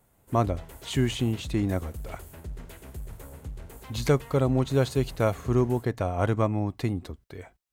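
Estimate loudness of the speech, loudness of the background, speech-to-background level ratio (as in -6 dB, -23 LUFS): -27.0 LUFS, -43.0 LUFS, 16.0 dB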